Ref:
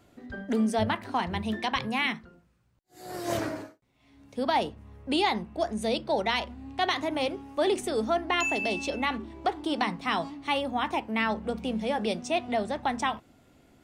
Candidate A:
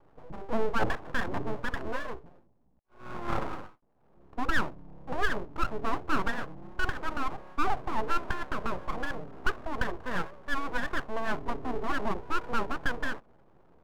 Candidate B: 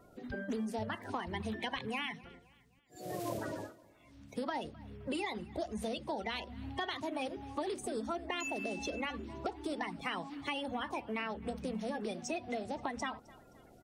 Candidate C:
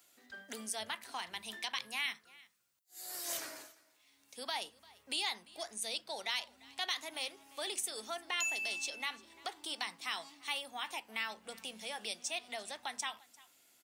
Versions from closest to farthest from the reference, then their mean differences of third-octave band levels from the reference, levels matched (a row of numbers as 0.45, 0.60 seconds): B, A, C; 5.0, 7.5, 11.0 decibels